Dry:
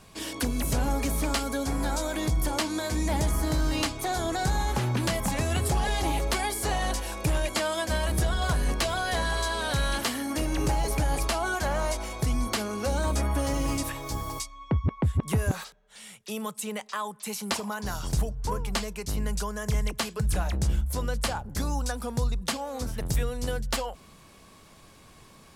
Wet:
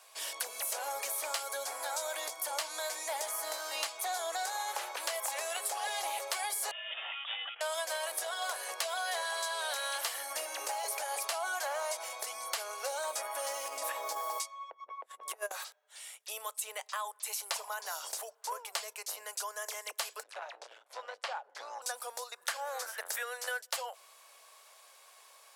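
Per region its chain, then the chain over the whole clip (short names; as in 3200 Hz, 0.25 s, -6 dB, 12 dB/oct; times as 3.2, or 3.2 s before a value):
6.71–7.61 HPF 620 Hz 6 dB/oct + negative-ratio compressor -35 dBFS, ratio -0.5 + inverted band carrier 3600 Hz
13.68–15.51 negative-ratio compressor -30 dBFS, ratio -0.5 + tilt shelf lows +5.5 dB, about 1400 Hz
20.23–21.82 LPF 9200 Hz + three-band isolator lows -17 dB, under 170 Hz, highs -20 dB, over 4500 Hz + core saturation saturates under 850 Hz
22.32–23.62 upward compressor, threshold -27 dBFS + bell 1600 Hz +12 dB 0.69 oct
whole clip: steep high-pass 540 Hz 36 dB/oct; high shelf 7600 Hz +7.5 dB; compressor, threshold -27 dBFS; gain -4 dB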